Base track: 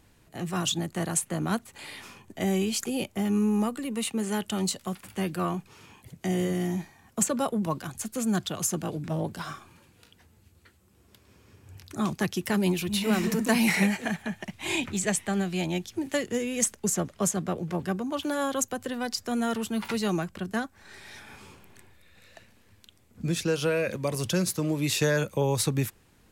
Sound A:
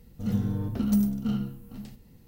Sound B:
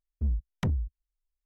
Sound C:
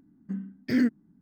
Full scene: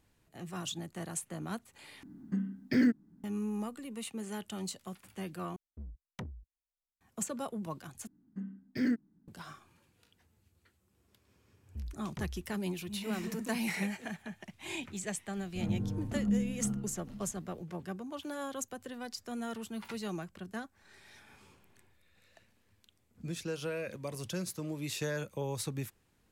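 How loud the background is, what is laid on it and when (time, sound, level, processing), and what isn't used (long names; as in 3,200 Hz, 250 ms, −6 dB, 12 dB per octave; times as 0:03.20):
base track −11 dB
0:02.03: overwrite with C −1.5 dB + multiband upward and downward compressor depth 40%
0:05.56: overwrite with B −8.5 dB + low-shelf EQ 160 Hz −11 dB
0:08.07: overwrite with C −7 dB
0:11.54: mix in B −13 dB + single-tap delay 190 ms −21.5 dB
0:15.36: mix in A −6.5 dB + treble cut that deepens with the level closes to 410 Hz, closed at −20 dBFS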